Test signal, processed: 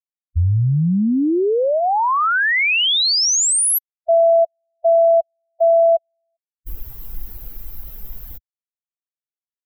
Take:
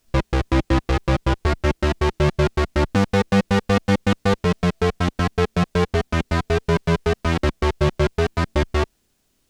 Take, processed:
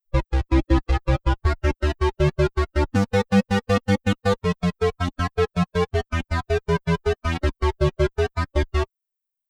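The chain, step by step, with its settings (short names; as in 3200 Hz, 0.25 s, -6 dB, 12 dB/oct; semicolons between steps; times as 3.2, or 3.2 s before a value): per-bin expansion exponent 2; low shelf 64 Hz +5 dB; gain +1.5 dB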